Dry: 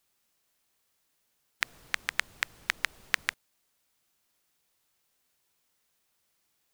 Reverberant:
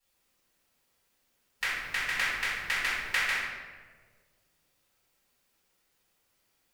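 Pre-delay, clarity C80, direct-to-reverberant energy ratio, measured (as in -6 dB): 4 ms, 1.0 dB, -13.0 dB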